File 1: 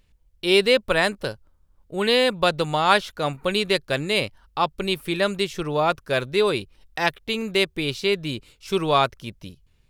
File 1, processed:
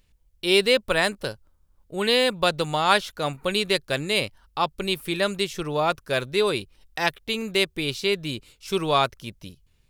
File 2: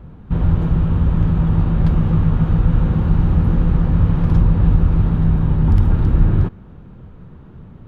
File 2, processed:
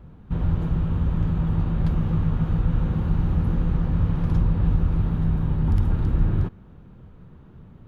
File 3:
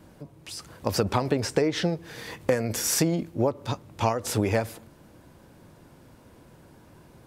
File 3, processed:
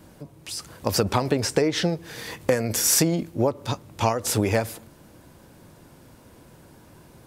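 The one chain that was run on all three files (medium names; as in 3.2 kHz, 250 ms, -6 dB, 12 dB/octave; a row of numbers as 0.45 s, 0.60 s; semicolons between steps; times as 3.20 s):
treble shelf 4.5 kHz +5.5 dB; normalise loudness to -24 LUFS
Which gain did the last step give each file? -2.0 dB, -7.0 dB, +2.0 dB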